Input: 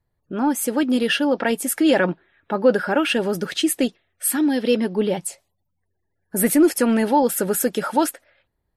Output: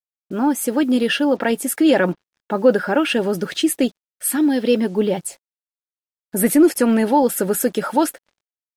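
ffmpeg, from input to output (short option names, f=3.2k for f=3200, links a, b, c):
-af "acrusher=bits=7:mix=0:aa=0.5,equalizer=f=300:t=o:w=2.9:g=2.5"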